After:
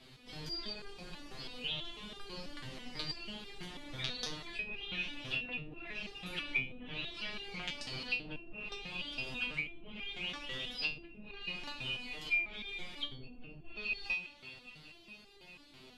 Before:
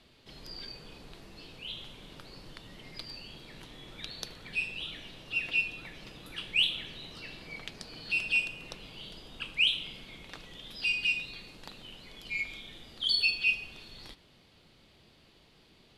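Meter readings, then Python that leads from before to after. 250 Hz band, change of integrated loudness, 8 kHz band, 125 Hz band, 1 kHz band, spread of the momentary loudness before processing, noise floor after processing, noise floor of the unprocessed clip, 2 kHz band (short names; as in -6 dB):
+2.5 dB, -8.5 dB, -3.0 dB, +1.5 dB, +2.5 dB, 22 LU, -58 dBFS, -62 dBFS, -5.5 dB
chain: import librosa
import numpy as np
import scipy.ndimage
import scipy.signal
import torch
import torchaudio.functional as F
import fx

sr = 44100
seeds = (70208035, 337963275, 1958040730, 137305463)

y = fx.echo_wet_bandpass(x, sr, ms=202, feedback_pct=70, hz=1500.0, wet_db=-13)
y = fx.env_lowpass_down(y, sr, base_hz=410.0, full_db=-27.0)
y = fx.resonator_held(y, sr, hz=6.1, low_hz=130.0, high_hz=400.0)
y = F.gain(torch.from_numpy(y), 15.5).numpy()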